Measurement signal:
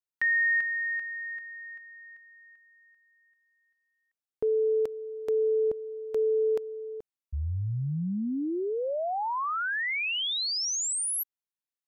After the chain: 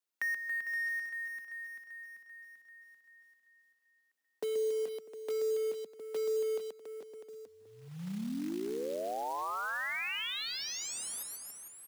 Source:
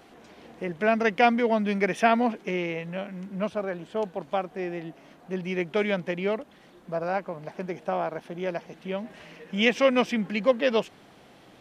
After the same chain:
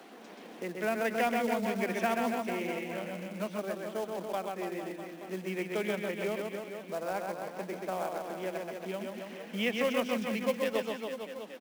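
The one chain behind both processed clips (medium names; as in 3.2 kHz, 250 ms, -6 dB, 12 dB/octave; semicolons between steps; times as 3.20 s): steep high-pass 180 Hz 48 dB/octave; reverse bouncing-ball echo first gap 130 ms, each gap 1.15×, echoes 5; short-mantissa float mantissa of 2-bit; three bands compressed up and down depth 40%; trim -8.5 dB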